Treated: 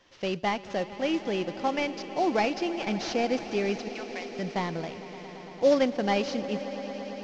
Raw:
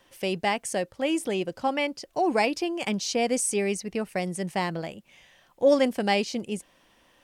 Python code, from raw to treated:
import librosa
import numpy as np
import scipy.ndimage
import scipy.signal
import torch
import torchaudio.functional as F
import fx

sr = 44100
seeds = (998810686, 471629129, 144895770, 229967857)

y = fx.cvsd(x, sr, bps=32000)
y = fx.highpass(y, sr, hz=1100.0, slope=12, at=(3.88, 4.39))
y = fx.echo_swell(y, sr, ms=113, loudest=5, wet_db=-18.0)
y = y * librosa.db_to_amplitude(-1.5)